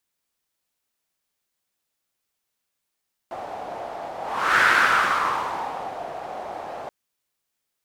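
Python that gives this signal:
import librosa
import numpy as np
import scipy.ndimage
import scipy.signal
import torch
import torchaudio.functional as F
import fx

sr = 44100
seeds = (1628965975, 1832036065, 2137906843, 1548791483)

y = fx.whoosh(sr, seeds[0], length_s=3.58, peak_s=1.31, rise_s=0.47, fall_s=1.49, ends_hz=720.0, peak_hz=1500.0, q=4.0, swell_db=16.5)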